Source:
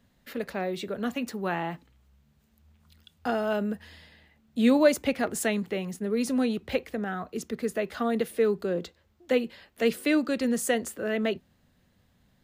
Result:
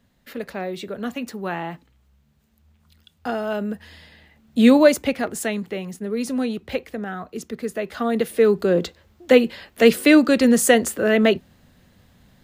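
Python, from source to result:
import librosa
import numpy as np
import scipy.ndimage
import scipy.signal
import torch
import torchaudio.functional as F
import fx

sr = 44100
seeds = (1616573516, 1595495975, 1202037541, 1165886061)

y = fx.gain(x, sr, db=fx.line((3.53, 2.0), (4.59, 9.0), (5.35, 2.0), (7.76, 2.0), (8.79, 11.0)))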